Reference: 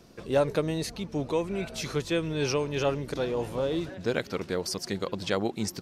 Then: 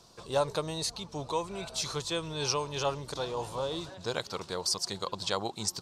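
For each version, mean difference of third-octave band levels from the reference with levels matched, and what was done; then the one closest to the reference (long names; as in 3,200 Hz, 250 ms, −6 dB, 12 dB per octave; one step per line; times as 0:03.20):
4.0 dB: octave-band graphic EQ 125/250/1,000/2,000/4,000/8,000 Hz +3/−6/+12/−6/+10/+11 dB
level −7 dB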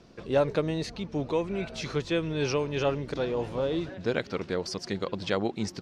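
2.0 dB: low-pass filter 5,200 Hz 12 dB per octave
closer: second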